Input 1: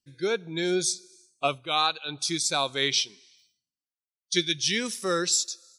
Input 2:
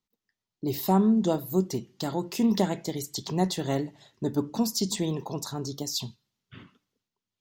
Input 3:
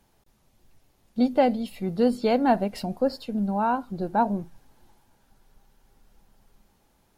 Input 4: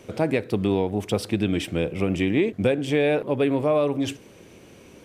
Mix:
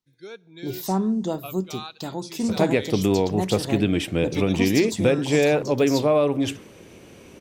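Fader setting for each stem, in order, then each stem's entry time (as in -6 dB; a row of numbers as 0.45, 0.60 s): -13.0 dB, -1.5 dB, off, +2.0 dB; 0.00 s, 0.00 s, off, 2.40 s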